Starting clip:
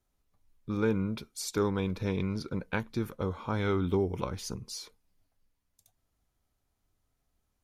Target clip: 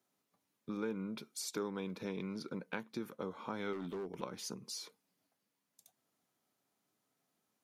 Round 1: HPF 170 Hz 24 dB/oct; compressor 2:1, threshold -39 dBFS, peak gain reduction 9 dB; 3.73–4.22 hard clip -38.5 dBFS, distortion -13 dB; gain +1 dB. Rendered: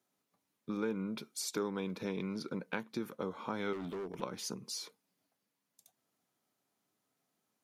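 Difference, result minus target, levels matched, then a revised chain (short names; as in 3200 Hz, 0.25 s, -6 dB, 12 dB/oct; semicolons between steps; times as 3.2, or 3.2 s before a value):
compressor: peak gain reduction -3 dB
HPF 170 Hz 24 dB/oct; compressor 2:1, threshold -45 dBFS, peak gain reduction 12 dB; 3.73–4.22 hard clip -38.5 dBFS, distortion -16 dB; gain +1 dB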